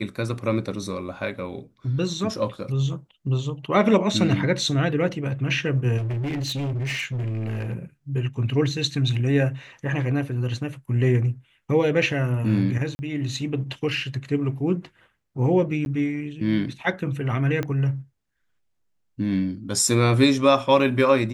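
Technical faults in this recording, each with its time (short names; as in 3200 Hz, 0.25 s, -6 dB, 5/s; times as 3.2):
5.97–7.74 clipped -24 dBFS
12.95–12.99 gap 40 ms
15.85–15.86 gap 11 ms
17.63 pop -14 dBFS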